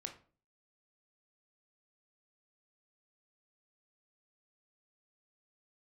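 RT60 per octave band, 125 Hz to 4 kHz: 0.55, 0.50, 0.45, 0.40, 0.35, 0.30 s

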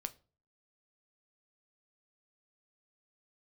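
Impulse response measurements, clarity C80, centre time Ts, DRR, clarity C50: 26.0 dB, 3 ms, 9.5 dB, 20.5 dB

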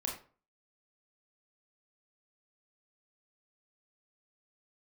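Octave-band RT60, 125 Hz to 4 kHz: 0.45, 0.40, 0.40, 0.40, 0.30, 0.25 s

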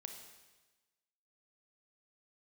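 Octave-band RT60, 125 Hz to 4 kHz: 1.2, 1.2, 1.2, 1.2, 1.2, 1.2 s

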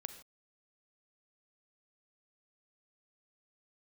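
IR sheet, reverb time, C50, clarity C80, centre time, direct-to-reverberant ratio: not exponential, 10.5 dB, 12.5 dB, 10 ms, 9.0 dB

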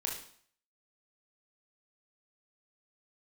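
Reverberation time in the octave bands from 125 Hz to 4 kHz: 0.55, 0.55, 0.55, 0.60, 0.55, 0.55 s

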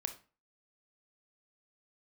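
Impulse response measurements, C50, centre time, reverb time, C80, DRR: 12.0 dB, 8 ms, 0.35 s, 18.0 dB, 7.5 dB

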